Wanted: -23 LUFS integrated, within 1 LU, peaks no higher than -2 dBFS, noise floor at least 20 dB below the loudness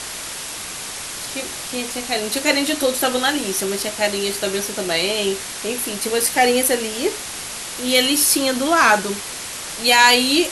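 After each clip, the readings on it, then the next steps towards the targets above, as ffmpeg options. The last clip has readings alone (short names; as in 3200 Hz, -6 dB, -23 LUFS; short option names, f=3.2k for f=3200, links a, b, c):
noise floor -31 dBFS; noise floor target -39 dBFS; loudness -19.0 LUFS; peak -2.5 dBFS; loudness target -23.0 LUFS
-> -af "afftdn=nr=8:nf=-31"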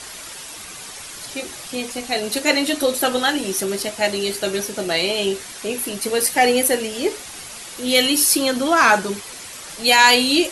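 noise floor -36 dBFS; noise floor target -39 dBFS
-> -af "afftdn=nr=6:nf=-36"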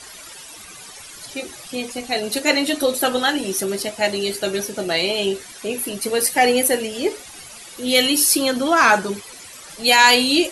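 noise floor -40 dBFS; loudness -18.5 LUFS; peak -2.5 dBFS; loudness target -23.0 LUFS
-> -af "volume=-4.5dB"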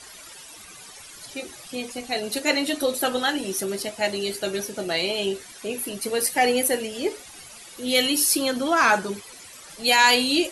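loudness -23.0 LUFS; peak -7.0 dBFS; noise floor -44 dBFS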